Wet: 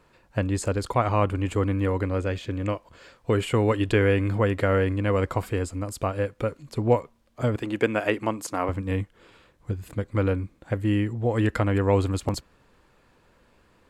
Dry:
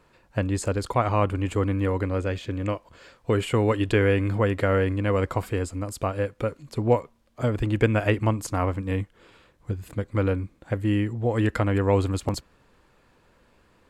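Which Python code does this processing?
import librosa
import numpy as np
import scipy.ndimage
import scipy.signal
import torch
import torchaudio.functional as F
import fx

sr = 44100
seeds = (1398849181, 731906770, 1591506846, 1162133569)

y = fx.highpass(x, sr, hz=240.0, slope=12, at=(7.56, 8.69))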